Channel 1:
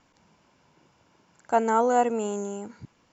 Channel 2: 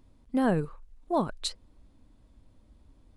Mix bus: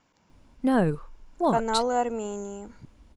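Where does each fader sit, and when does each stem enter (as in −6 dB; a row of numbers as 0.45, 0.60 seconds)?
−3.5, +3.0 decibels; 0.00, 0.30 seconds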